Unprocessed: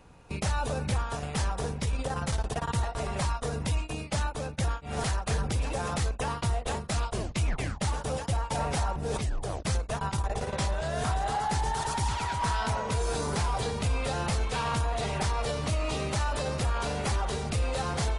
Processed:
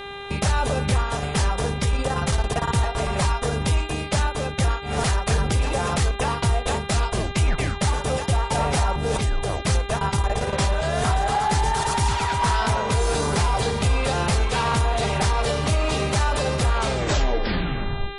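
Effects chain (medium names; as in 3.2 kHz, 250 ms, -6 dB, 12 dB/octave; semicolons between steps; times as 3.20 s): tape stop on the ending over 1.42 s; mains buzz 400 Hz, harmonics 10, -43 dBFS -3 dB/octave; trim +7.5 dB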